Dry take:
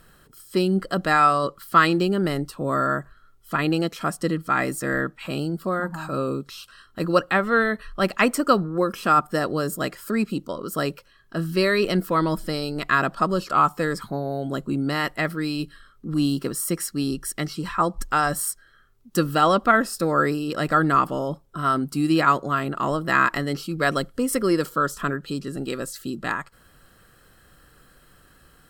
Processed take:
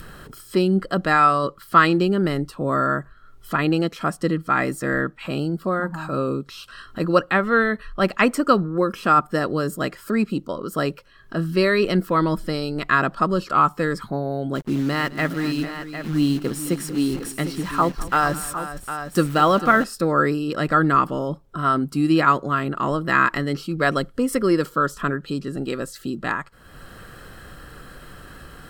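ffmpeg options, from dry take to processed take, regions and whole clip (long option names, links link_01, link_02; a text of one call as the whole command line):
ffmpeg -i in.wav -filter_complex "[0:a]asettb=1/sr,asplit=3[link_01][link_02][link_03];[link_01]atrim=end=14.554[link_04];[link_02]atrim=start=14.55:end=19.84,asetpts=PTS-STARTPTS,afade=type=in:duration=0.004:curve=qsin,afade=type=out:start_time=5.286:duration=0.004:curve=qsin,acrusher=bits=7:dc=4:mix=0:aa=0.000001,aecho=1:1:210|445|756:0.133|0.224|0.299,atrim=end_sample=233289[link_05];[link_03]atrim=start=19.836[link_06];[link_04][link_05]acrossfade=duration=0.004:curve1=hsin:curve2=qsin[link_07];[link_07][link_06]acrossfade=duration=0.004:curve1=qsin:curve2=hsin,adynamicequalizer=threshold=0.0126:dfrequency=720:dqfactor=2.1:tfrequency=720:tqfactor=2.1:attack=5:release=100:ratio=0.375:range=2.5:mode=cutabove:tftype=bell,acompressor=mode=upward:threshold=-31dB:ratio=2.5,highshelf=frequency=5000:gain=-8.5,volume=2.5dB" out.wav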